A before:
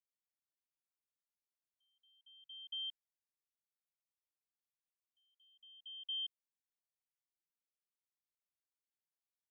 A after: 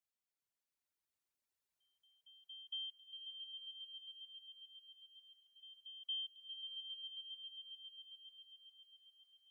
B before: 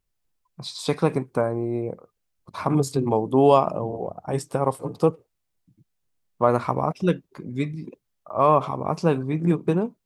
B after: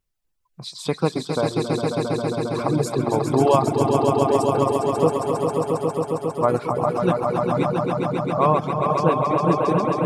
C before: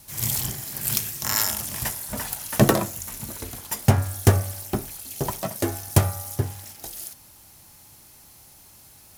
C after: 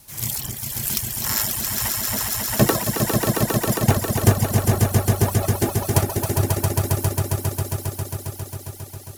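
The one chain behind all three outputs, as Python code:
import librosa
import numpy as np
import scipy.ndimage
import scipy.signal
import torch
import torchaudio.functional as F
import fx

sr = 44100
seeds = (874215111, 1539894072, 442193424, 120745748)

y = fx.echo_swell(x, sr, ms=135, loudest=5, wet_db=-4.5)
y = fx.dereverb_blind(y, sr, rt60_s=0.93)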